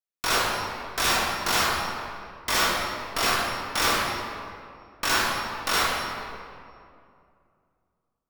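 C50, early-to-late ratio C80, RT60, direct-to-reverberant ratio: −1.5 dB, 1.0 dB, 2.4 s, −4.5 dB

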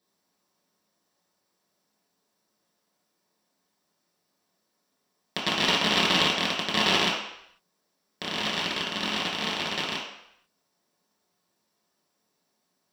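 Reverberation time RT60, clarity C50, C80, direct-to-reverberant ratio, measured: 0.75 s, 3.0 dB, 6.0 dB, −5.5 dB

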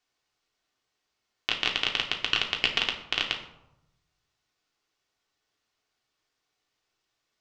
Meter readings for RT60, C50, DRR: 0.90 s, 8.5 dB, 0.0 dB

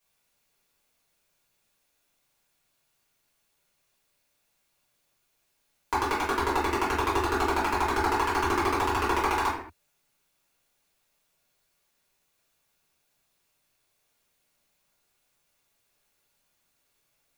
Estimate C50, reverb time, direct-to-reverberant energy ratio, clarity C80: 4.0 dB, non-exponential decay, −10.5 dB, 7.5 dB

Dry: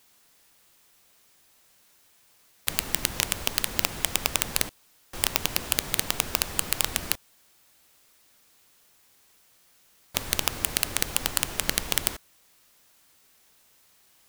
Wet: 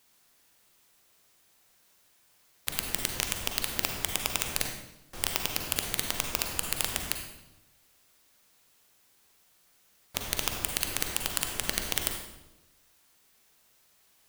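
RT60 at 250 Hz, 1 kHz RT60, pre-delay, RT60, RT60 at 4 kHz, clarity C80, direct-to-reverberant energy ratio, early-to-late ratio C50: 1.2 s, 0.90 s, 38 ms, 0.95 s, 0.75 s, 7.0 dB, 4.0 dB, 5.0 dB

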